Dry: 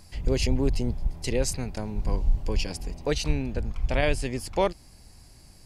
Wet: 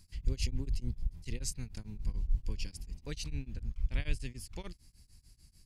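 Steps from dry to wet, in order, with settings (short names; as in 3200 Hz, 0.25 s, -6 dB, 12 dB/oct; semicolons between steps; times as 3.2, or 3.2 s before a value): passive tone stack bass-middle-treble 6-0-2; beating tremolo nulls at 6.8 Hz; gain +7.5 dB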